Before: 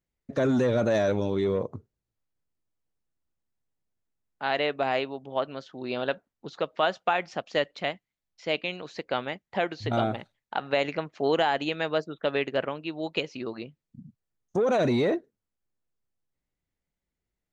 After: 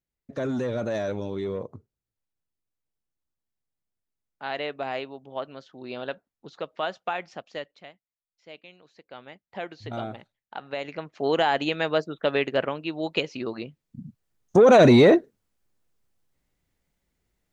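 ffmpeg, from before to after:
-af "volume=13.3,afade=t=out:st=7.23:d=0.65:silence=0.237137,afade=t=in:st=9.07:d=0.57:silence=0.316228,afade=t=in:st=10.85:d=0.71:silence=0.316228,afade=t=in:st=13.62:d=1.09:silence=0.446684"

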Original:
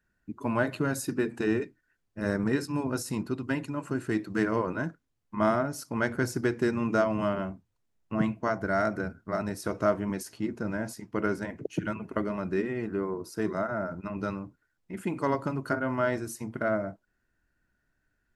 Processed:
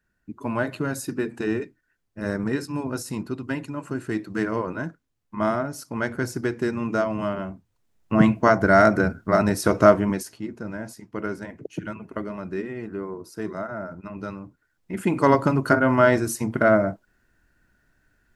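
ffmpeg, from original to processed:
-af "volume=14.1,afade=t=in:st=7.46:d=0.91:silence=0.316228,afade=t=out:st=9.84:d=0.55:silence=0.237137,afade=t=in:st=14.38:d=0.93:silence=0.266073"

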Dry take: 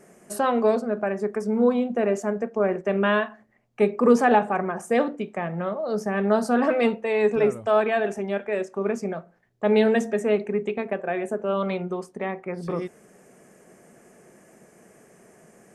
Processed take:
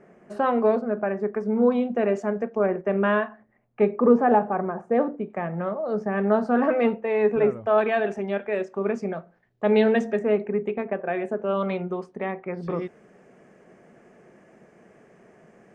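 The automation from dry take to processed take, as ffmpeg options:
-af "asetnsamples=n=441:p=0,asendcmd='1.72 lowpass f 4000;2.66 lowpass f 2000;4.01 lowpass f 1200;5.3 lowpass f 2100;7.78 lowpass f 4200;10.19 lowpass f 2100;11.07 lowpass f 3400',lowpass=2300"

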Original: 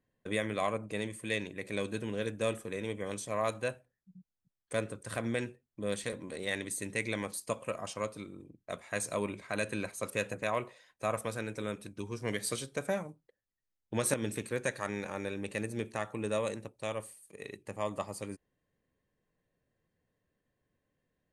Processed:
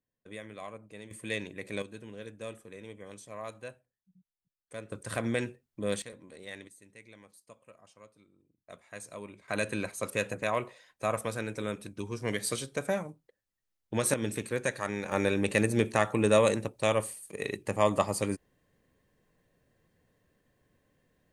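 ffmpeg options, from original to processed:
-af "asetnsamples=n=441:p=0,asendcmd='1.11 volume volume -0.5dB;1.82 volume volume -9dB;4.92 volume volume 3dB;6.02 volume volume -9dB;6.68 volume volume -19dB;8.58 volume volume -9.5dB;9.48 volume volume 2.5dB;15.12 volume volume 10dB',volume=0.282"

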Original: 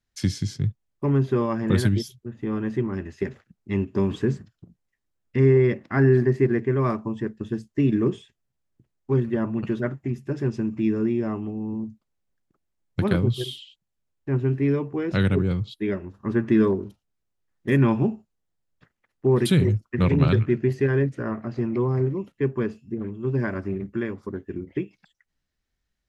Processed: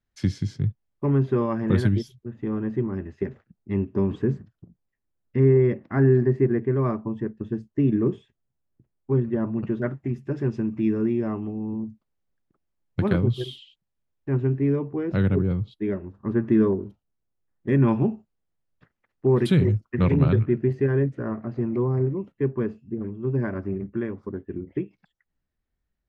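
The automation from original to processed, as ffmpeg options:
-af "asetnsamples=n=441:p=0,asendcmd='2.48 lowpass f 1000;9.82 lowpass f 2400;14.47 lowpass f 1000;17.87 lowpass f 2400;20.18 lowpass f 1100',lowpass=f=2000:p=1"

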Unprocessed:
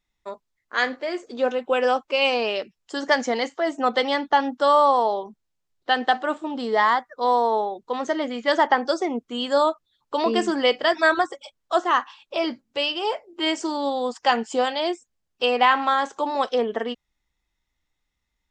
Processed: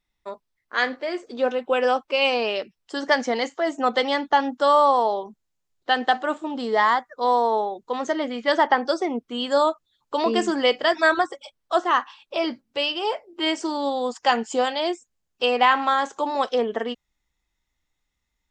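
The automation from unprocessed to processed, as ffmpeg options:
-af "asetnsamples=n=441:p=0,asendcmd='3.39 equalizer g 4;8.12 equalizer g -7;9.51 equalizer g 4;11.17 equalizer g -4;13.76 equalizer g 4',equalizer=f=6900:t=o:w=0.21:g=-6"

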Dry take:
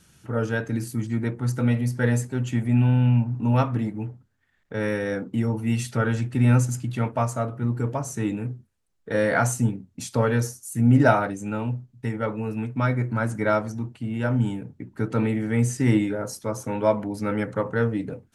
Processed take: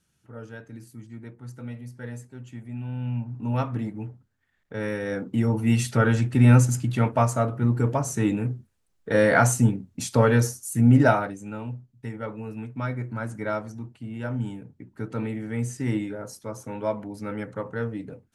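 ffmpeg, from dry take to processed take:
-af "volume=1.41,afade=t=in:st=2.82:d=0.98:silence=0.266073,afade=t=in:st=4.99:d=0.66:silence=0.473151,afade=t=out:st=10.66:d=0.74:silence=0.334965"

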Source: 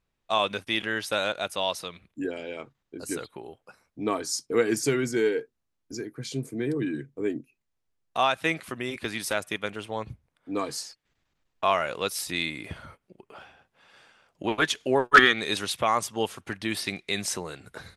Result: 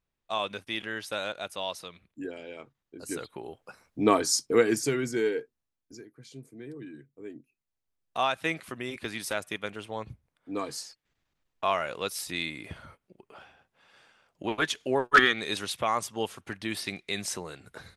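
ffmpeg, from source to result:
-af "volume=6.68,afade=t=in:st=2.96:d=1.16:silence=0.251189,afade=t=out:st=4.12:d=0.75:silence=0.354813,afade=t=out:st=5.38:d=0.71:silence=0.281838,afade=t=in:st=7.28:d=0.89:silence=0.298538"

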